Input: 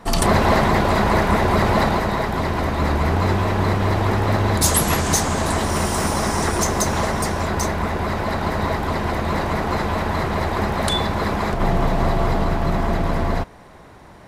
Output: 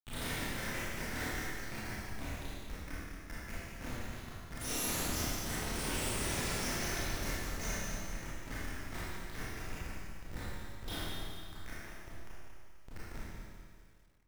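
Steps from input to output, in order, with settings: random holes in the spectrogram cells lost 83%; steep high-pass 1.7 kHz 72 dB/octave; treble shelf 9 kHz +10 dB; band-stop 3 kHz, Q 13; ring modulator 180 Hz; flange 0.16 Hz, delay 2.9 ms, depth 5.1 ms, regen +77%; Schmitt trigger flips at -37.5 dBFS; Schroeder reverb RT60 2 s, combs from 25 ms, DRR -9.5 dB; bit-crushed delay 203 ms, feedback 35%, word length 10-bit, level -10.5 dB; trim -2.5 dB

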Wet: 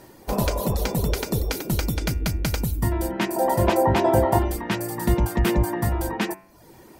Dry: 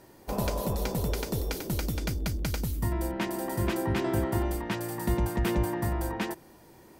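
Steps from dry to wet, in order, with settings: reverb removal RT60 0.62 s; 3.36–4.39 s: high-order bell 690 Hz +10 dB 1.3 oct; de-hum 95.21 Hz, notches 30; trim +7.5 dB

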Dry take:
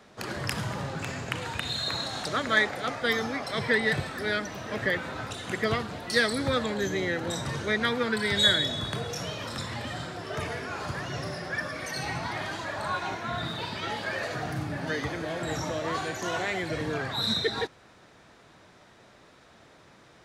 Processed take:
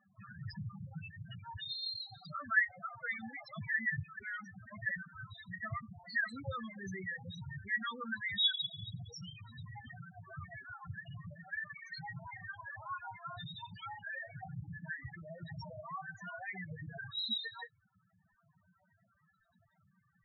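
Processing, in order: peaking EQ 390 Hz -13 dB 1.3 oct; reverberation, pre-delay 5 ms, DRR 8 dB; loudest bins only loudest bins 4; reverb removal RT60 0.68 s; trim -5 dB

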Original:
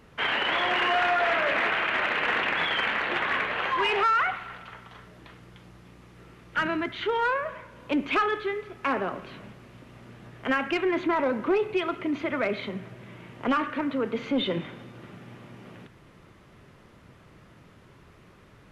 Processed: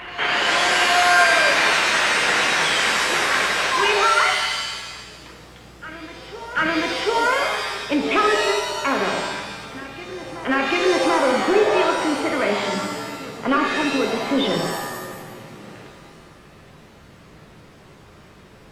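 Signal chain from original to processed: reverse echo 740 ms -15.5 dB; pitch-shifted reverb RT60 1.1 s, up +7 st, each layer -2 dB, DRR 3 dB; trim +4 dB

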